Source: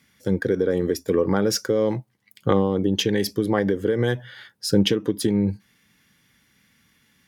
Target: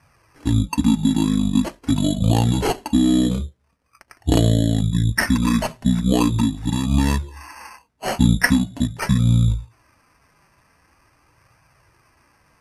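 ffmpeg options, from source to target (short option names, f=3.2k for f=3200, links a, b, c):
-af "acrusher=samples=7:mix=1:aa=0.000001,asetrate=25442,aresample=44100,flanger=delay=1.1:depth=4.2:regen=-39:speed=0.43:shape=triangular,volume=7.5dB"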